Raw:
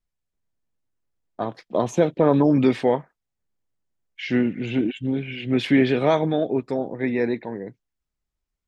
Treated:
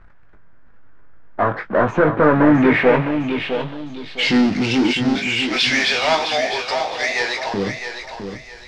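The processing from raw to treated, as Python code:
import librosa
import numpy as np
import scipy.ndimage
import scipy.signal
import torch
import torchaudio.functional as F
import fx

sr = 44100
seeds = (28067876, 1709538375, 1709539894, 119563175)

y = fx.highpass(x, sr, hz=710.0, slope=24, at=(5.15, 7.54))
y = fx.power_curve(y, sr, exponent=0.5)
y = fx.doubler(y, sr, ms=20.0, db=-7)
y = fx.echo_feedback(y, sr, ms=659, feedback_pct=31, wet_db=-8)
y = fx.filter_sweep_lowpass(y, sr, from_hz=1500.0, to_hz=5100.0, start_s=2.23, end_s=4.5, q=3.1)
y = F.gain(torch.from_numpy(y), -2.5).numpy()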